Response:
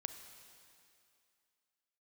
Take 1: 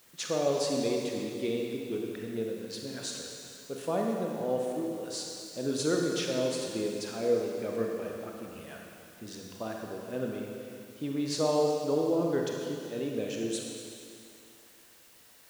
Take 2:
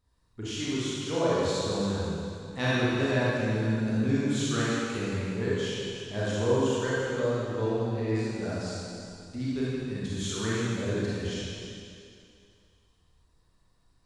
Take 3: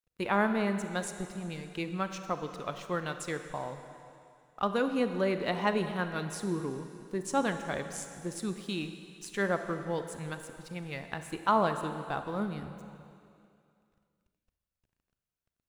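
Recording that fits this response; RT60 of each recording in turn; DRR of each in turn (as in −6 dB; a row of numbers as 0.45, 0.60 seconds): 3; 2.5, 2.5, 2.5 seconds; −0.5, −9.0, 7.5 decibels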